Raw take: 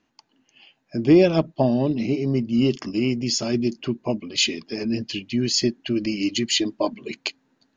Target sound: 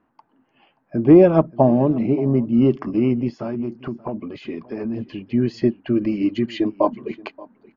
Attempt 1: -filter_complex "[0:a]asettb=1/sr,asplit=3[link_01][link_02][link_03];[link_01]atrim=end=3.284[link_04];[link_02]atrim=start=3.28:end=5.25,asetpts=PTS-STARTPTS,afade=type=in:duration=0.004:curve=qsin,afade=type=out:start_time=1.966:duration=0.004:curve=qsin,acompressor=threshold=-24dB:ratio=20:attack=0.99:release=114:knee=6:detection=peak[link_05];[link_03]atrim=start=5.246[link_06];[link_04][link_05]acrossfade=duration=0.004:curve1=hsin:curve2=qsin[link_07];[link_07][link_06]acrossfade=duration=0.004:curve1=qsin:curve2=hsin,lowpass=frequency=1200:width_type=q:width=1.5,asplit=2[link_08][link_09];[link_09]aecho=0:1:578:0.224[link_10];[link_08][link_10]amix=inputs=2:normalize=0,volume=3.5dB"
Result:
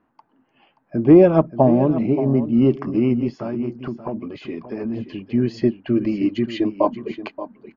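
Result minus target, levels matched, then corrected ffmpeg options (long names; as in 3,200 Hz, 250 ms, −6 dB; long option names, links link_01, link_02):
echo-to-direct +8.5 dB
-filter_complex "[0:a]asettb=1/sr,asplit=3[link_01][link_02][link_03];[link_01]atrim=end=3.284[link_04];[link_02]atrim=start=3.28:end=5.25,asetpts=PTS-STARTPTS,afade=type=in:duration=0.004:curve=qsin,afade=type=out:start_time=1.966:duration=0.004:curve=qsin,acompressor=threshold=-24dB:ratio=20:attack=0.99:release=114:knee=6:detection=peak[link_05];[link_03]atrim=start=5.246[link_06];[link_04][link_05]acrossfade=duration=0.004:curve1=hsin:curve2=qsin[link_07];[link_07][link_06]acrossfade=duration=0.004:curve1=qsin:curve2=hsin,lowpass=frequency=1200:width_type=q:width=1.5,asplit=2[link_08][link_09];[link_09]aecho=0:1:578:0.0841[link_10];[link_08][link_10]amix=inputs=2:normalize=0,volume=3.5dB"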